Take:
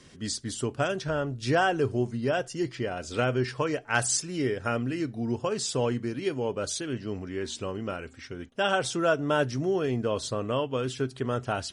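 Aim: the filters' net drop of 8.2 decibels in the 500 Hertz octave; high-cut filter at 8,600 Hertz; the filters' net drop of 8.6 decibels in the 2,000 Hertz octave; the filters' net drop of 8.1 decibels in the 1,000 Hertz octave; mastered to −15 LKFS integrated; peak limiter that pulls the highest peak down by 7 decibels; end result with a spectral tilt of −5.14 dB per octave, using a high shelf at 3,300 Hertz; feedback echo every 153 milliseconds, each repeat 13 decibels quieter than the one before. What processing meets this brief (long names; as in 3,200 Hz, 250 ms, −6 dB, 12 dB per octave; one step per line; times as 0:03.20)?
low-pass filter 8,600 Hz
parametric band 500 Hz −9 dB
parametric band 1,000 Hz −5 dB
parametric band 2,000 Hz −8.5 dB
high-shelf EQ 3,300 Hz −4 dB
brickwall limiter −25.5 dBFS
repeating echo 153 ms, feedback 22%, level −13 dB
level +20.5 dB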